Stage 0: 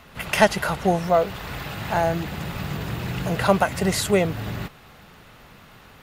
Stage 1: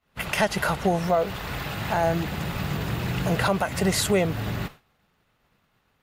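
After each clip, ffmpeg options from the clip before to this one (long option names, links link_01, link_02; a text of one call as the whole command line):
ffmpeg -i in.wav -af "agate=range=-33dB:threshold=-34dB:ratio=3:detection=peak,alimiter=limit=-13dB:level=0:latency=1:release=143,volume=1dB" out.wav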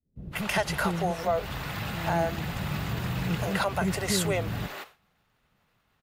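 ffmpeg -i in.wav -filter_complex "[0:a]asplit=2[link_01][link_02];[link_02]asoftclip=type=tanh:threshold=-24.5dB,volume=-10dB[link_03];[link_01][link_03]amix=inputs=2:normalize=0,acrossover=split=380[link_04][link_05];[link_05]adelay=160[link_06];[link_04][link_06]amix=inputs=2:normalize=0,volume=-4.5dB" out.wav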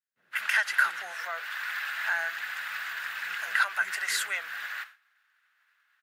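ffmpeg -i in.wav -af "highpass=frequency=1600:width_type=q:width=5.1,volume=-3dB" out.wav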